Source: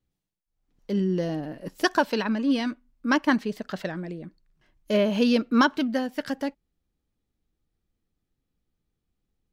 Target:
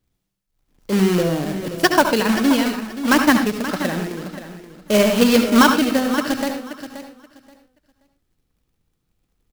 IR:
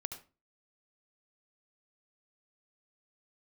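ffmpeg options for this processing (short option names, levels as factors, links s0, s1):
-filter_complex "[0:a]acrusher=bits=2:mode=log:mix=0:aa=0.000001,aecho=1:1:528|1056|1584:0.251|0.0502|0.01[s0];[1:a]atrim=start_sample=2205,afade=t=out:st=0.2:d=0.01,atrim=end_sample=9261[s1];[s0][s1]afir=irnorm=-1:irlink=0,volume=2.66"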